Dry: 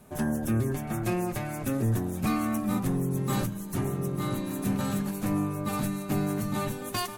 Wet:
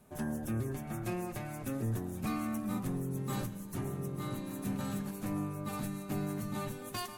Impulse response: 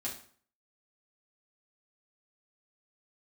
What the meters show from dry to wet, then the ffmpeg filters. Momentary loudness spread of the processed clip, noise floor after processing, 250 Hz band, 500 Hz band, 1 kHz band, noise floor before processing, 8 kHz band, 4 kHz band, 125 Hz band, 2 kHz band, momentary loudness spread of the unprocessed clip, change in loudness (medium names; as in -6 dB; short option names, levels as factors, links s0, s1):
4 LU, -45 dBFS, -8.0 dB, -8.0 dB, -8.0 dB, -38 dBFS, -8.0 dB, -8.0 dB, -7.5 dB, -8.0 dB, 4 LU, -8.0 dB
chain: -filter_complex "[0:a]asplit=2[s0][s1];[1:a]atrim=start_sample=2205,asetrate=28665,aresample=44100,adelay=108[s2];[s1][s2]afir=irnorm=-1:irlink=0,volume=0.106[s3];[s0][s3]amix=inputs=2:normalize=0,volume=0.398"